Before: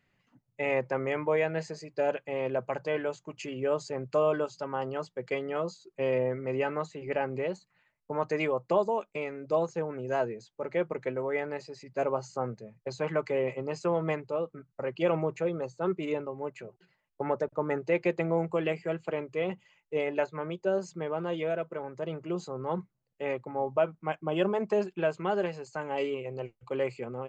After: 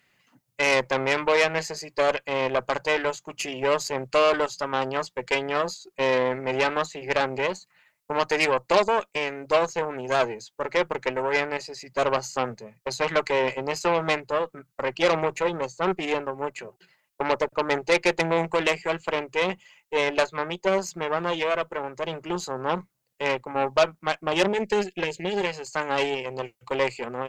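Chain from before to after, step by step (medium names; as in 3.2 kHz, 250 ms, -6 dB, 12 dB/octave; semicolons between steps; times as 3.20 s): spectral selection erased 24.48–25.47 s, 560–1600 Hz; Chebyshev shaper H 8 -19 dB, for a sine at -13.5 dBFS; tilt EQ +2.5 dB/octave; trim +7 dB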